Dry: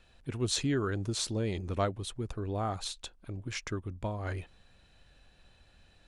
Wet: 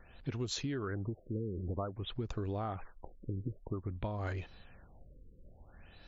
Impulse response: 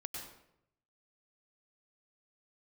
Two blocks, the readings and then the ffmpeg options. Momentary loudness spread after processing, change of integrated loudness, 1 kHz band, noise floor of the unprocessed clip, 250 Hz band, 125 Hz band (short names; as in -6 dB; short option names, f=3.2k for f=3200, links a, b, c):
13 LU, -5.0 dB, -5.5 dB, -63 dBFS, -4.5 dB, -3.0 dB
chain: -af "acompressor=threshold=-39dB:ratio=12,afftfilt=real='re*lt(b*sr/1024,510*pow(7600/510,0.5+0.5*sin(2*PI*0.52*pts/sr)))':imag='im*lt(b*sr/1024,510*pow(7600/510,0.5+0.5*sin(2*PI*0.52*pts/sr)))':win_size=1024:overlap=0.75,volume=5.5dB"